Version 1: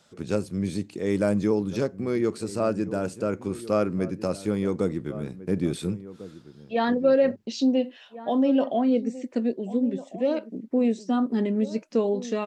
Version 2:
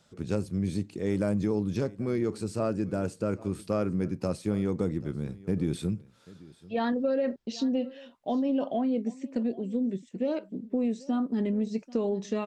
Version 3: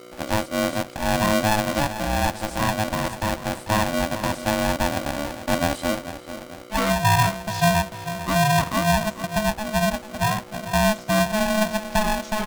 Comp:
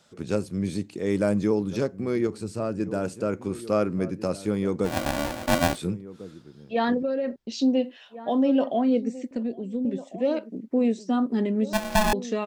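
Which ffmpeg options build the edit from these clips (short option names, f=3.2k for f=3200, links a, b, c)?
-filter_complex "[1:a]asplit=3[a][b][c];[2:a]asplit=2[d][e];[0:a]asplit=6[f][g][h][i][j][k];[f]atrim=end=2.272[l];[a]atrim=start=2.268:end=2.802[m];[g]atrim=start=2.798:end=4.99[n];[d]atrim=start=4.83:end=5.82[o];[h]atrim=start=5.66:end=7.032[p];[b]atrim=start=7.028:end=7.522[q];[i]atrim=start=7.518:end=9.312[r];[c]atrim=start=9.308:end=9.852[s];[j]atrim=start=9.848:end=11.732[t];[e]atrim=start=11.728:end=12.132[u];[k]atrim=start=12.128[v];[l][m]acrossfade=d=0.004:c1=hsin:c2=hsin[w];[w][n]acrossfade=d=0.004:c1=hsin:c2=hsin[x];[x][o]acrossfade=d=0.16:c1=tri:c2=tri[y];[y][p]acrossfade=d=0.16:c1=tri:c2=tri[z];[z][q]acrossfade=d=0.004:c1=hsin:c2=hsin[aa];[aa][r]acrossfade=d=0.004:c1=hsin:c2=hsin[ab];[ab][s]acrossfade=d=0.004:c1=hsin:c2=hsin[ac];[ac][t]acrossfade=d=0.004:c1=hsin:c2=hsin[ad];[ad][u]acrossfade=d=0.004:c1=hsin:c2=hsin[ae];[ae][v]acrossfade=d=0.004:c1=hsin:c2=hsin"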